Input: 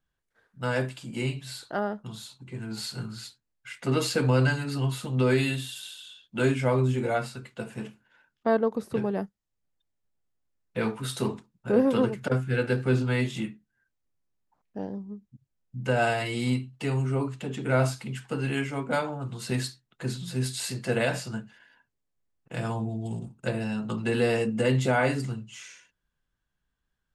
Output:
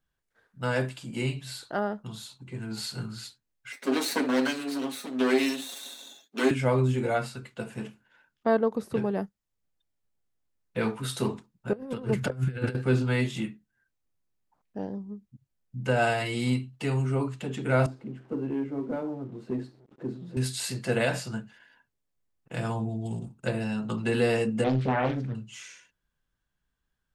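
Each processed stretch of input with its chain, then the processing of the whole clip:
0:03.72–0:06.51: lower of the sound and its delayed copy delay 0.49 ms + Butterworth high-pass 210 Hz 48 dB per octave + comb filter 7.3 ms, depth 54%
0:11.73–0:12.75: parametric band 100 Hz +5.5 dB 1.6 octaves + compressor whose output falls as the input rises −29 dBFS, ratio −0.5
0:17.86–0:20.37: converter with a step at zero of −41.5 dBFS + resonant band-pass 320 Hz, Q 2.1 + leveller curve on the samples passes 1
0:24.64–0:25.35: head-to-tape spacing loss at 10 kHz 33 dB + highs frequency-modulated by the lows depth 0.99 ms
whole clip: no processing

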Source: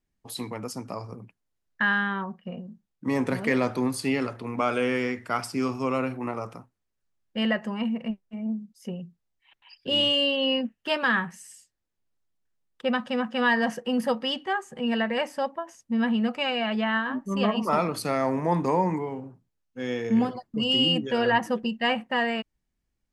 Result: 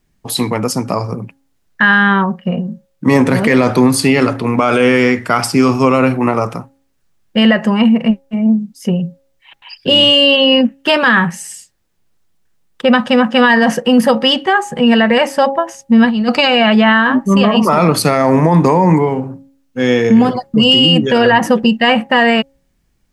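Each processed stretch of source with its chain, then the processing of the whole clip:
0:16.05–0:16.48: compressor whose output falls as the input rises −28 dBFS, ratio −0.5 + parametric band 4,500 Hz +14.5 dB 0.29 octaves
whole clip: parametric band 160 Hz +5 dB 0.34 octaves; hum removal 273.1 Hz, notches 3; boost into a limiter +18.5 dB; level −1 dB

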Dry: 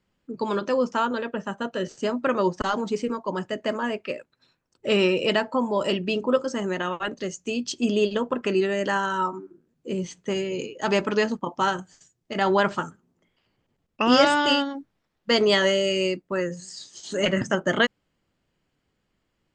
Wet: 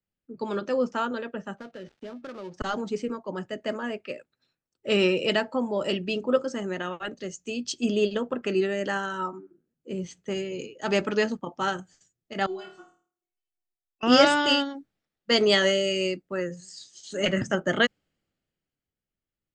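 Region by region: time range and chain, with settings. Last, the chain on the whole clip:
0:01.57–0:02.54: gap after every zero crossing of 0.13 ms + low-pass filter 4,700 Hz + downward compressor 4 to 1, threshold −30 dBFS
0:12.46–0:14.03: parametric band 1,700 Hz −6.5 dB 0.32 octaves + stiff-string resonator 360 Hz, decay 0.21 s, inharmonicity 0.002 + flutter between parallel walls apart 4.5 metres, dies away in 0.52 s
whole clip: parametric band 1,000 Hz −9 dB 0.21 octaves; multiband upward and downward expander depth 40%; level −2.5 dB

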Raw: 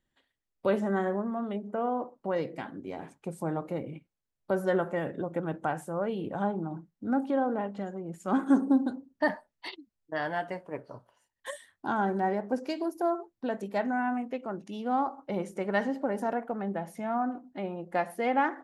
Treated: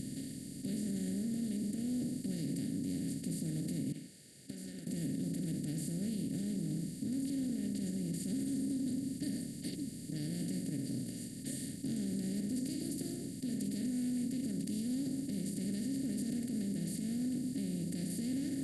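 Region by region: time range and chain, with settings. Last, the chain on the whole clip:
0:03.92–0:04.87: four-pole ladder band-pass 1,700 Hz, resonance 70% + downward compressor 3 to 1, threshold −56 dBFS
whole clip: compressor on every frequency bin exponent 0.2; Chebyshev band-stop filter 130–7,300 Hz, order 2; brickwall limiter −29 dBFS

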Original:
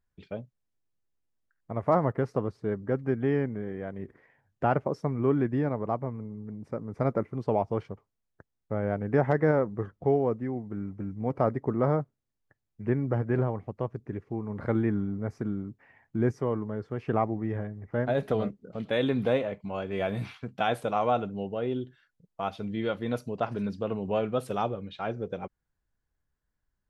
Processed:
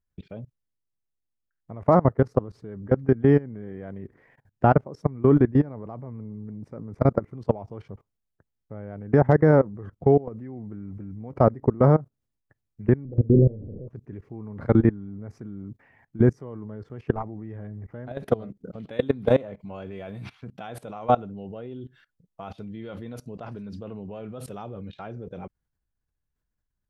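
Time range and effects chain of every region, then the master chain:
0:13.05–0:13.88: converter with a step at zero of −32 dBFS + elliptic low-pass filter 510 Hz, stop band 70 dB + double-tracking delay 37 ms −7 dB
whole clip: low-shelf EQ 310 Hz +6 dB; output level in coarse steps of 22 dB; dynamic equaliser 2,600 Hz, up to −5 dB, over −52 dBFS, Q 1.5; level +7 dB

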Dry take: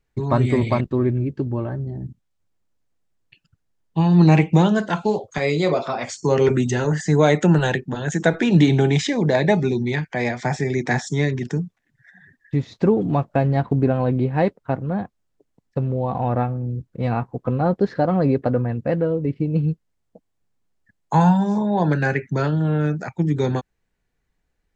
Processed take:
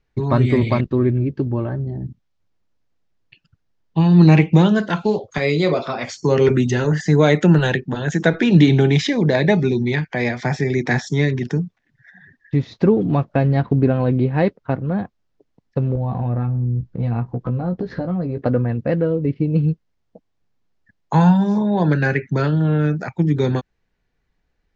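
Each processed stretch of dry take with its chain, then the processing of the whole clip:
0:15.95–0:18.38: low-shelf EQ 250 Hz +11 dB + downward compressor 10 to 1, threshold −23 dBFS + double-tracking delay 17 ms −6.5 dB
whole clip: low-pass filter 5,900 Hz 24 dB per octave; dynamic equaliser 800 Hz, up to −5 dB, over −32 dBFS, Q 1.5; level +3 dB

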